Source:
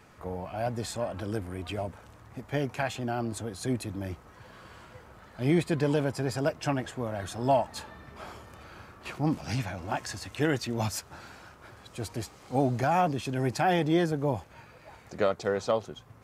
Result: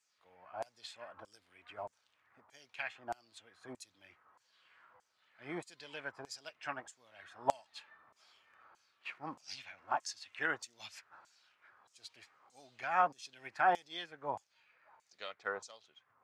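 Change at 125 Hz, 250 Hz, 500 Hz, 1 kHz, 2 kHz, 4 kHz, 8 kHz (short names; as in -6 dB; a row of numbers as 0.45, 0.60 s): -29.0, -23.0, -15.0, -5.5, -4.0, -8.5, -11.0 dB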